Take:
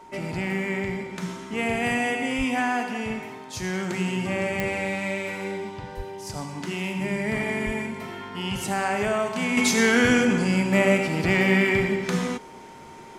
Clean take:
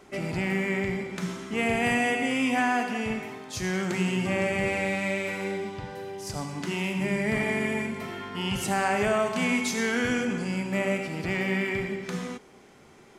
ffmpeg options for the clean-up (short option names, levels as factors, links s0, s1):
-filter_complex "[0:a]adeclick=t=4,bandreject=f=920:w=30,asplit=3[s0][s1][s2];[s0]afade=t=out:st=2.37:d=0.02[s3];[s1]highpass=f=140:w=0.5412,highpass=f=140:w=1.3066,afade=t=in:st=2.37:d=0.02,afade=t=out:st=2.49:d=0.02[s4];[s2]afade=t=in:st=2.49:d=0.02[s5];[s3][s4][s5]amix=inputs=3:normalize=0,asplit=3[s6][s7][s8];[s6]afade=t=out:st=5.96:d=0.02[s9];[s7]highpass=f=140:w=0.5412,highpass=f=140:w=1.3066,afade=t=in:st=5.96:d=0.02,afade=t=out:st=6.08:d=0.02[s10];[s8]afade=t=in:st=6.08:d=0.02[s11];[s9][s10][s11]amix=inputs=3:normalize=0,asplit=3[s12][s13][s14];[s12]afade=t=out:st=7.65:d=0.02[s15];[s13]highpass=f=140:w=0.5412,highpass=f=140:w=1.3066,afade=t=in:st=7.65:d=0.02,afade=t=out:st=7.77:d=0.02[s16];[s14]afade=t=in:st=7.77:d=0.02[s17];[s15][s16][s17]amix=inputs=3:normalize=0,asetnsamples=n=441:p=0,asendcmd='9.57 volume volume -7.5dB',volume=1"